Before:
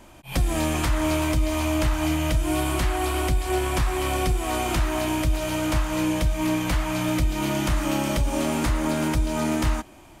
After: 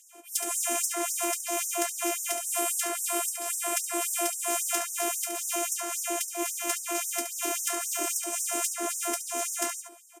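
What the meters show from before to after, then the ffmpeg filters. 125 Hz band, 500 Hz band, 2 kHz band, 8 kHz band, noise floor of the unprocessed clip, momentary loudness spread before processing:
under -40 dB, -6.5 dB, -5.5 dB, +8.0 dB, -48 dBFS, 2 LU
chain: -filter_complex "[0:a]acrossover=split=570|1200[a][b][c];[a]acompressor=mode=upward:threshold=-36dB:ratio=2.5[d];[b]asoftclip=type=tanh:threshold=-34.5dB[e];[d][e][c]amix=inputs=3:normalize=0,afftfilt=real='hypot(re,im)*cos(PI*b)':imag='0':win_size=512:overlap=0.75,aemphasis=mode=reproduction:type=cd,aeval=exprs='0.251*(cos(1*acos(clip(val(0)/0.251,-1,1)))-cos(1*PI/2))+0.112*(cos(2*acos(clip(val(0)/0.251,-1,1)))-cos(2*PI/2))+0.00158*(cos(3*acos(clip(val(0)/0.251,-1,1)))-cos(3*PI/2))+0.00447*(cos(6*acos(clip(val(0)/0.251,-1,1)))-cos(6*PI/2))+0.00158*(cos(7*acos(clip(val(0)/0.251,-1,1)))-cos(7*PI/2))':c=same,acompressor=threshold=-26dB:ratio=1.5,acrossover=split=240 6200:gain=0.141 1 0.178[f][g][h];[f][g][h]amix=inputs=3:normalize=0,asplit=2[i][j];[j]aecho=0:1:71|142|213:0.376|0.0677|0.0122[k];[i][k]amix=inputs=2:normalize=0,aexciter=amount=10:drive=9.8:freq=6.6k,afftfilt=real='re*gte(b*sr/1024,240*pow(5400/240,0.5+0.5*sin(2*PI*3.7*pts/sr)))':imag='im*gte(b*sr/1024,240*pow(5400/240,0.5+0.5*sin(2*PI*3.7*pts/sr)))':win_size=1024:overlap=0.75"

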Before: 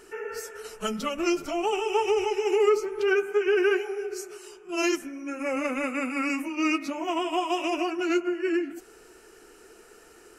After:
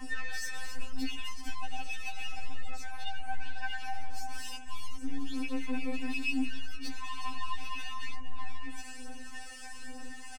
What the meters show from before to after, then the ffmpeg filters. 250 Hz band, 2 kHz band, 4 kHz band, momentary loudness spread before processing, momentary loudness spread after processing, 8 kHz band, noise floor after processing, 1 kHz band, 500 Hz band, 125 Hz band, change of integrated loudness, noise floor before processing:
-11.0 dB, -7.5 dB, -5.0 dB, 13 LU, 10 LU, -6.0 dB, -40 dBFS, -10.5 dB, -28.0 dB, n/a, -12.5 dB, -53 dBFS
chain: -filter_complex "[0:a]highshelf=f=4k:g=7,acompressor=threshold=-32dB:ratio=6,aeval=exprs='val(0)+0.002*(sin(2*PI*50*n/s)+sin(2*PI*2*50*n/s)/2+sin(2*PI*3*50*n/s)/3+sin(2*PI*4*50*n/s)/4+sin(2*PI*5*50*n/s)/5)':c=same,acrossover=split=6400[a][b];[b]acompressor=threshold=-59dB:ratio=4:attack=1:release=60[c];[a][c]amix=inputs=2:normalize=0,aresample=22050,aresample=44100,alimiter=level_in=8dB:limit=-24dB:level=0:latency=1:release=112,volume=-8dB,aeval=exprs='(tanh(141*val(0)+0.5)-tanh(0.5))/141':c=same,aecho=1:1:6.6:0.97,acrossover=split=920[d][e];[d]aeval=exprs='val(0)*(1-0.5/2+0.5/2*cos(2*PI*1.2*n/s))':c=same[f];[e]aeval=exprs='val(0)*(1-0.5/2-0.5/2*cos(2*PI*1.2*n/s))':c=same[g];[f][g]amix=inputs=2:normalize=0,aphaser=in_gain=1:out_gain=1:delay=1.8:decay=0.53:speed=1.1:type=triangular,equalizer=f=6.8k:w=4.9:g=-5.5,afftfilt=real='re*3.46*eq(mod(b,12),0)':imag='im*3.46*eq(mod(b,12),0)':win_size=2048:overlap=0.75,volume=10dB"

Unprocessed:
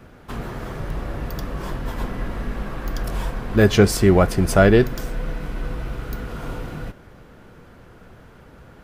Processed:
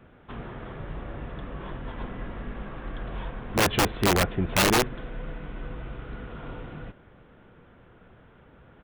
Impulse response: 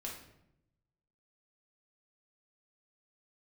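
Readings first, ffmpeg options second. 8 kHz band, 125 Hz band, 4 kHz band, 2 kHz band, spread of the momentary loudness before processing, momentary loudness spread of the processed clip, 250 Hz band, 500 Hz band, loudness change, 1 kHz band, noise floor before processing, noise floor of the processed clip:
0.0 dB, -10.0 dB, +1.5 dB, -3.0 dB, 17 LU, 17 LU, -9.5 dB, -10.5 dB, -7.0 dB, -2.0 dB, -47 dBFS, -55 dBFS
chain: -af "aresample=8000,aresample=44100,lowshelf=f=64:g=-3.5,aeval=exprs='(mod(2.51*val(0)+1,2)-1)/2.51':c=same,volume=-7dB"

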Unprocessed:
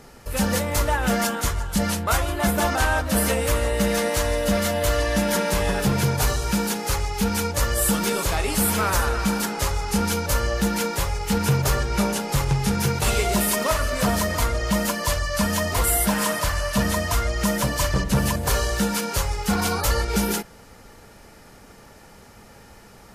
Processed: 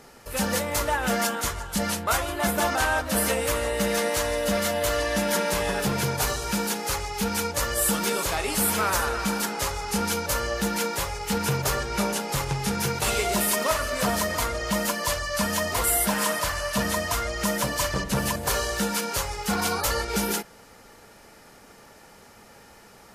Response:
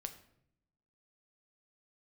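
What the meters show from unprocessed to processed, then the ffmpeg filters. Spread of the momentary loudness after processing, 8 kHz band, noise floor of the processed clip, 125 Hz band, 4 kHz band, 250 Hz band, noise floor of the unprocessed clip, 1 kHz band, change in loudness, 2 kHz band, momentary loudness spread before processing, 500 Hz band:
5 LU, -1.0 dB, -51 dBFS, -7.5 dB, -1.0 dB, -5.0 dB, -48 dBFS, -1.5 dB, -2.5 dB, -1.0 dB, 3 LU, -2.0 dB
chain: -af "lowshelf=f=170:g=-10,volume=-1dB"

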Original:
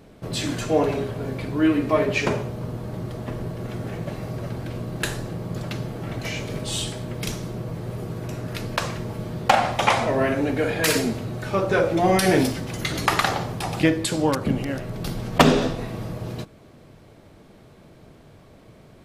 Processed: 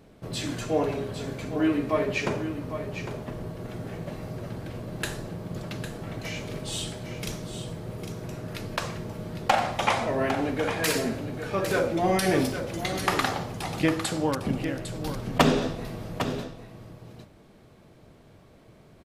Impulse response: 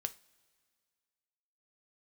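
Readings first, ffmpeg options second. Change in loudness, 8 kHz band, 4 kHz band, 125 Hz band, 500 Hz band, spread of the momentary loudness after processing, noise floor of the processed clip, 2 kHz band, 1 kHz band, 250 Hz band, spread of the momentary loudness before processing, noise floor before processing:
-4.5 dB, -4.5 dB, -4.5 dB, -5.5 dB, -4.5 dB, 12 LU, -54 dBFS, -4.5 dB, -4.5 dB, -4.5 dB, 12 LU, -50 dBFS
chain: -af "aecho=1:1:804:0.335,volume=-5dB"

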